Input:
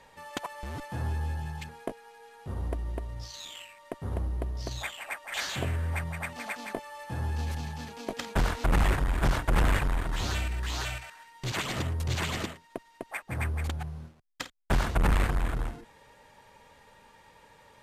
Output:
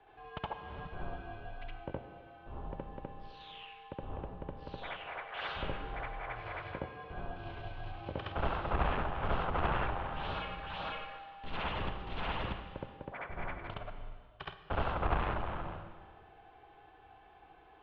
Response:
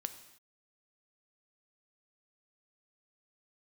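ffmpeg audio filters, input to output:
-filter_complex "[0:a]highpass=frequency=150:width_type=q:width=0.5412,highpass=frequency=150:width_type=q:width=1.307,lowpass=frequency=3100:width_type=q:width=0.5176,lowpass=frequency=3100:width_type=q:width=0.7071,lowpass=frequency=3100:width_type=q:width=1.932,afreqshift=-130,equalizer=frequency=125:width_type=o:width=1:gain=-4,equalizer=frequency=250:width_type=o:width=1:gain=-9,equalizer=frequency=500:width_type=o:width=1:gain=-4,equalizer=frequency=2000:width_type=o:width=1:gain=-12,asplit=2[link_01][link_02];[1:a]atrim=start_sample=2205,asetrate=22491,aresample=44100,adelay=68[link_03];[link_02][link_03]afir=irnorm=-1:irlink=0,volume=1dB[link_04];[link_01][link_04]amix=inputs=2:normalize=0,volume=-1.5dB"

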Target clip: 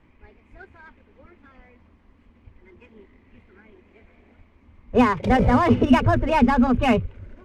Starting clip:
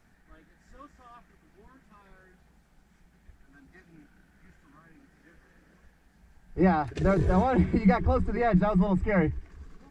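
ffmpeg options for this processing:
ffmpeg -i in.wav -af "adynamicsmooth=sensitivity=6.5:basefreq=2000,asetrate=58653,aresample=44100,volume=6dB" out.wav

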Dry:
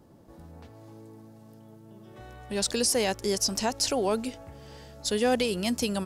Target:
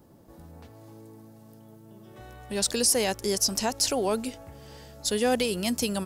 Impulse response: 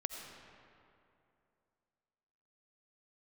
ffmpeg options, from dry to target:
-af "highshelf=frequency=11000:gain=11"

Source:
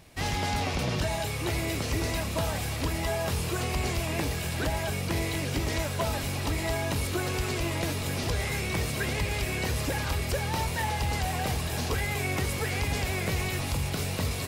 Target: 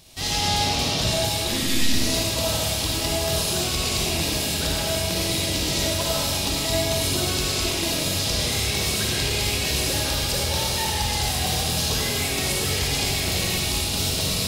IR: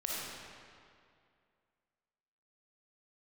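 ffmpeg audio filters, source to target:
-filter_complex "[0:a]highshelf=frequency=2700:width_type=q:width=1.5:gain=9,asplit=3[link_01][link_02][link_03];[link_01]afade=type=out:start_time=1.47:duration=0.02[link_04];[link_02]afreqshift=-330,afade=type=in:start_time=1.47:duration=0.02,afade=type=out:start_time=1.92:duration=0.02[link_05];[link_03]afade=type=in:start_time=1.92:duration=0.02[link_06];[link_04][link_05][link_06]amix=inputs=3:normalize=0[link_07];[1:a]atrim=start_sample=2205,afade=type=out:start_time=0.44:duration=0.01,atrim=end_sample=19845[link_08];[link_07][link_08]afir=irnorm=-1:irlink=0"

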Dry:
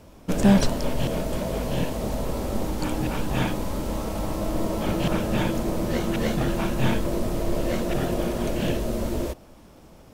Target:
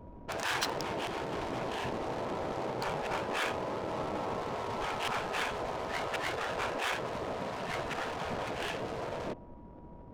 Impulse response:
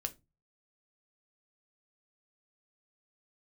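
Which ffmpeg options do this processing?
-af "adynamicsmooth=sensitivity=6:basefreq=660,afftfilt=real='re*lt(hypot(re,im),0.141)':imag='im*lt(hypot(re,im),0.141)':win_size=1024:overlap=0.75,aeval=exprs='val(0)+0.00126*sin(2*PI*960*n/s)':channel_layout=same"

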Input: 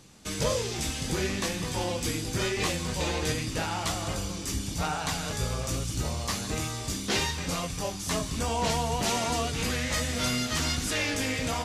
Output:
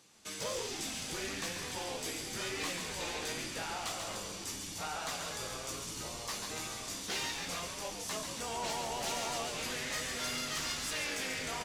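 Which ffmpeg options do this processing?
ffmpeg -i in.wav -filter_complex "[0:a]highpass=frequency=560:poles=1,asoftclip=type=tanh:threshold=-24dB,asplit=2[link_01][link_02];[link_02]asplit=8[link_03][link_04][link_05][link_06][link_07][link_08][link_09][link_10];[link_03]adelay=138,afreqshift=-100,volume=-6dB[link_11];[link_04]adelay=276,afreqshift=-200,volume=-10.3dB[link_12];[link_05]adelay=414,afreqshift=-300,volume=-14.6dB[link_13];[link_06]adelay=552,afreqshift=-400,volume=-18.9dB[link_14];[link_07]adelay=690,afreqshift=-500,volume=-23.2dB[link_15];[link_08]adelay=828,afreqshift=-600,volume=-27.5dB[link_16];[link_09]adelay=966,afreqshift=-700,volume=-31.8dB[link_17];[link_10]adelay=1104,afreqshift=-800,volume=-36.1dB[link_18];[link_11][link_12][link_13][link_14][link_15][link_16][link_17][link_18]amix=inputs=8:normalize=0[link_19];[link_01][link_19]amix=inputs=2:normalize=0,volume=-6dB" out.wav

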